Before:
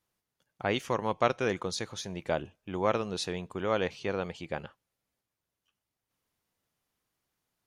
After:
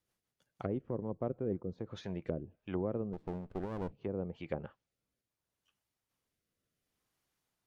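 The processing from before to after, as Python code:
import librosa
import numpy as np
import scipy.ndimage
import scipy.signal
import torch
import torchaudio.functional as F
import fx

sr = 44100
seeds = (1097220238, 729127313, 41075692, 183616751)

y = fx.env_lowpass_down(x, sr, base_hz=390.0, full_db=-29.5)
y = fx.rotary_switch(y, sr, hz=6.3, then_hz=0.7, switch_at_s=1.41)
y = fx.running_max(y, sr, window=33, at=(3.13, 3.92))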